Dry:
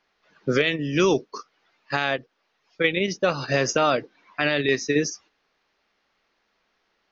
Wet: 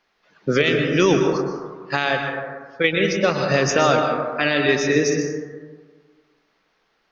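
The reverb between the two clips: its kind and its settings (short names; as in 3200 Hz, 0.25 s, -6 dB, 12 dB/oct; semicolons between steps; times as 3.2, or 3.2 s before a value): plate-style reverb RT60 1.6 s, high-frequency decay 0.3×, pre-delay 0.11 s, DRR 3 dB; gain +2.5 dB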